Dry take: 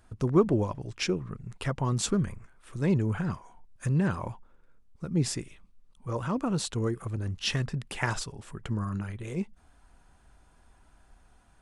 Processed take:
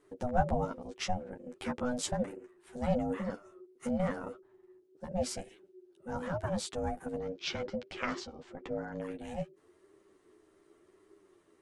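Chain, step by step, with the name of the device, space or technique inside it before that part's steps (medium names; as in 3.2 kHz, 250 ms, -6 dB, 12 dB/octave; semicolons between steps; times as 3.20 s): alien voice (ring modulator 370 Hz; flange 0.9 Hz, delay 9.5 ms, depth 3.4 ms, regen +3%); 7.19–8.98 s: low-pass 5.9 kHz 24 dB/octave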